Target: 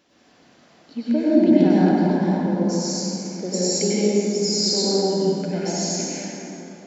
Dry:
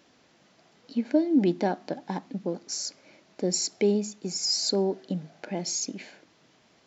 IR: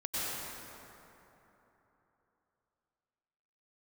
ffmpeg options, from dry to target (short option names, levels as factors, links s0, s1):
-filter_complex "[0:a]asplit=3[s0][s1][s2];[s0]afade=t=out:st=1.51:d=0.02[s3];[s1]asubboost=boost=7.5:cutoff=220,afade=t=in:st=1.51:d=0.02,afade=t=out:st=2.44:d=0.02[s4];[s2]afade=t=in:st=2.44:d=0.02[s5];[s3][s4][s5]amix=inputs=3:normalize=0[s6];[1:a]atrim=start_sample=2205[s7];[s6][s7]afir=irnorm=-1:irlink=0,volume=1.19"